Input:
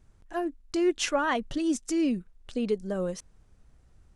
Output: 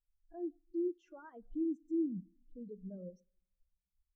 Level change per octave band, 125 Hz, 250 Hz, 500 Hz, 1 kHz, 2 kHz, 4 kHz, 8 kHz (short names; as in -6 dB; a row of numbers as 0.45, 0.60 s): -11.0 dB, -9.5 dB, -13.0 dB, -26.0 dB, under -30 dB, under -40 dB, under -40 dB